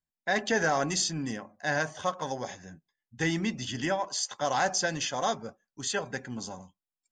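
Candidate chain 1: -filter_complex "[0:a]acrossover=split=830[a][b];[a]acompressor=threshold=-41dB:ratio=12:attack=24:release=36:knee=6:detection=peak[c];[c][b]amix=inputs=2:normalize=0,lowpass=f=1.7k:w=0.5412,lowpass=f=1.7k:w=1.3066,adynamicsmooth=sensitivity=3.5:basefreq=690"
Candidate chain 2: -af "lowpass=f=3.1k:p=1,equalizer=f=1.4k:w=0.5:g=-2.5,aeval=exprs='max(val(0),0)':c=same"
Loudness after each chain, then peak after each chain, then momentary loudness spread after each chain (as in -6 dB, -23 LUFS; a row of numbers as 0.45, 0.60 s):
-37.0, -38.5 LUFS; -20.5, -17.5 dBFS; 15, 12 LU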